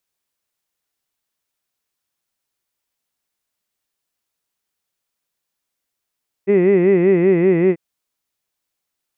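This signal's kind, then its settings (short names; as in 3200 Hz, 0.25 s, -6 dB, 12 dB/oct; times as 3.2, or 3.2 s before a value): formant-synthesis vowel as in hid, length 1.29 s, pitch 191 Hz, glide -1.5 st, vibrato 5.2 Hz, vibrato depth 1.35 st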